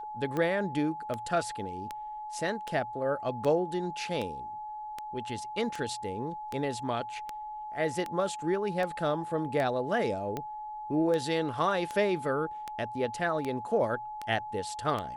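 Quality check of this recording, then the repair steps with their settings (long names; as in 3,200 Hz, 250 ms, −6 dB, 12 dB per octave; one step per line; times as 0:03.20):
scratch tick 78 rpm −20 dBFS
whistle 850 Hz −37 dBFS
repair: click removal
notch filter 850 Hz, Q 30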